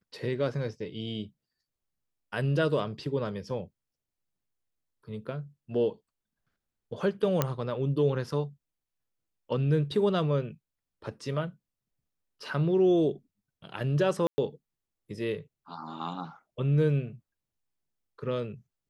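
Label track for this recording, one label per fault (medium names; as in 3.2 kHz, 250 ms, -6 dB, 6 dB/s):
7.420000	7.420000	pop -10 dBFS
14.270000	14.380000	dropout 110 ms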